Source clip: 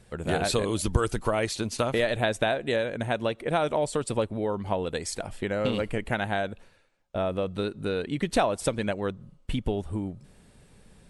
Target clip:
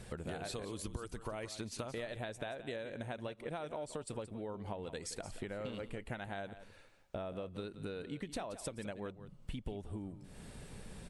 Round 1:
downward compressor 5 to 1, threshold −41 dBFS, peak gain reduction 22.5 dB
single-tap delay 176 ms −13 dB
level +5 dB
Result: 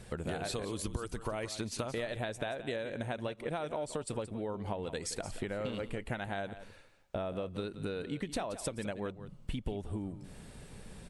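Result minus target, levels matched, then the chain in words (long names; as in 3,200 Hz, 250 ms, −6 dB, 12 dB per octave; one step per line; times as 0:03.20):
downward compressor: peak gain reduction −5 dB
downward compressor 5 to 1, threshold −47.5 dBFS, peak gain reduction 27.5 dB
single-tap delay 176 ms −13 dB
level +5 dB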